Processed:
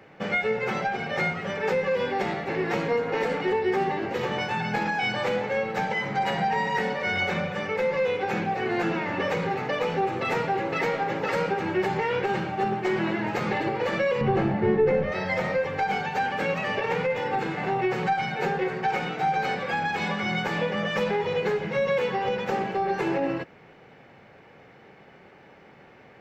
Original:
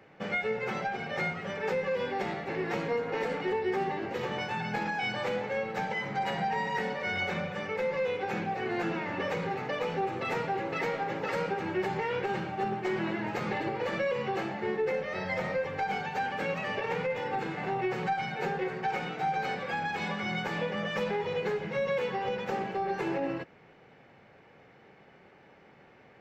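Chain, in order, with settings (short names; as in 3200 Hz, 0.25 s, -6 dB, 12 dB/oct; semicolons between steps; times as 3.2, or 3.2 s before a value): 14.21–15.12 RIAA curve playback; gain +5.5 dB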